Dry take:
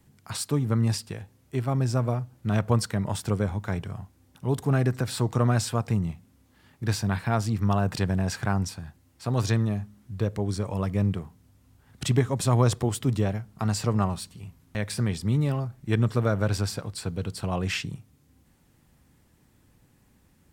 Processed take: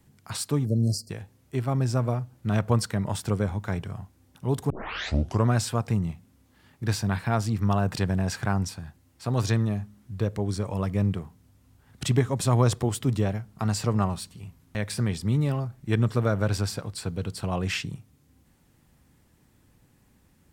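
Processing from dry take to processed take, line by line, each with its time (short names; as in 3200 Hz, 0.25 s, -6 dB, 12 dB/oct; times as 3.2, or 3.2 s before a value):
0.66–1.1 spectral delete 710–4100 Hz
4.7 tape start 0.77 s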